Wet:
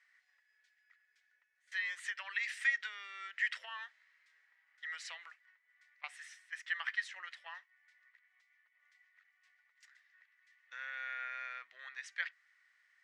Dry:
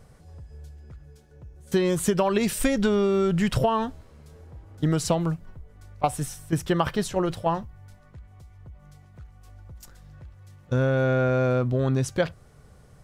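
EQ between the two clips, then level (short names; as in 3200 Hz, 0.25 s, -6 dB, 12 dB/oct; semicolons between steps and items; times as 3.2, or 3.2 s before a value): ladder high-pass 1800 Hz, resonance 80%; air absorption 110 m; +1.5 dB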